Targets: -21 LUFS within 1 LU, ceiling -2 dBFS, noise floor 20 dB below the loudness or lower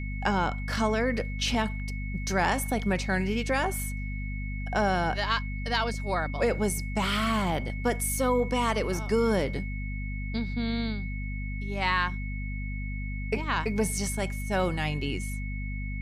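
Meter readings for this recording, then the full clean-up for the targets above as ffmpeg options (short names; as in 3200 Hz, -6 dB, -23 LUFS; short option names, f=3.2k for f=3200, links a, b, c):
hum 50 Hz; harmonics up to 250 Hz; hum level -31 dBFS; steady tone 2200 Hz; tone level -41 dBFS; loudness -29.0 LUFS; peak -12.0 dBFS; loudness target -21.0 LUFS
-> -af "bandreject=f=50:t=h:w=6,bandreject=f=100:t=h:w=6,bandreject=f=150:t=h:w=6,bandreject=f=200:t=h:w=6,bandreject=f=250:t=h:w=6"
-af "bandreject=f=2.2k:w=30"
-af "volume=8dB"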